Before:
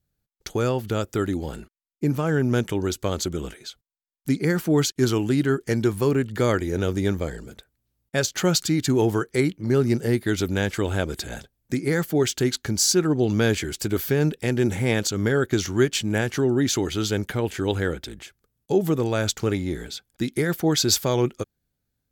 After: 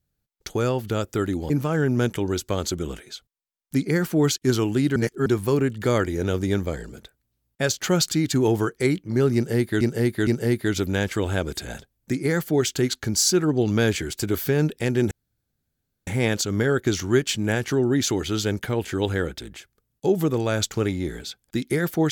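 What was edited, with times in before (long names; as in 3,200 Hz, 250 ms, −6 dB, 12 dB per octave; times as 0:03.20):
0:01.50–0:02.04: remove
0:05.50–0:05.80: reverse
0:09.89–0:10.35: repeat, 3 plays
0:14.73: splice in room tone 0.96 s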